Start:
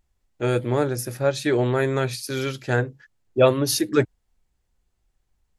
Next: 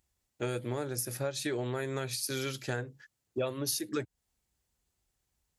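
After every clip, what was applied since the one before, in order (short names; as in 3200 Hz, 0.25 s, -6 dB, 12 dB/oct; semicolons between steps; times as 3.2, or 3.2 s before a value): HPF 59 Hz; high shelf 4000 Hz +10 dB; compressor 6:1, threshold -25 dBFS, peak gain reduction 14 dB; gain -5.5 dB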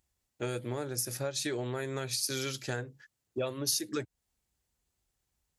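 dynamic EQ 5900 Hz, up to +6 dB, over -49 dBFS, Q 0.96; gain -1 dB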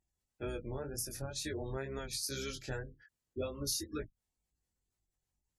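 octaver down 2 oct, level -2 dB; spectral gate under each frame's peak -25 dB strong; chorus 2 Hz, delay 19 ms, depth 3.8 ms; gain -2.5 dB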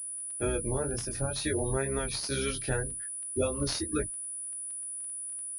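crackle 13/s -50 dBFS; pulse-width modulation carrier 9800 Hz; gain +9 dB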